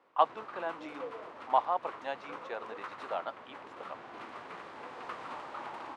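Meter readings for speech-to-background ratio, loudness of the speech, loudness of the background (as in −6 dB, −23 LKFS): 10.0 dB, −35.0 LKFS, −45.0 LKFS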